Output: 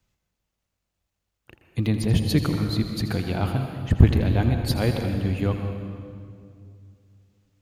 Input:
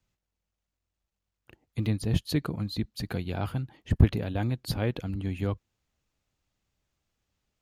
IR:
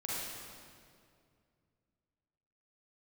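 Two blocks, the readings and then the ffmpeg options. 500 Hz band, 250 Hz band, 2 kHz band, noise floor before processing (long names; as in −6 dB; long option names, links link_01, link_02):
+6.5 dB, +6.5 dB, +6.5 dB, below −85 dBFS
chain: -filter_complex "[0:a]asplit=2[link_01][link_02];[1:a]atrim=start_sample=2205,adelay=82[link_03];[link_02][link_03]afir=irnorm=-1:irlink=0,volume=-8dB[link_04];[link_01][link_04]amix=inputs=2:normalize=0,volume=5dB"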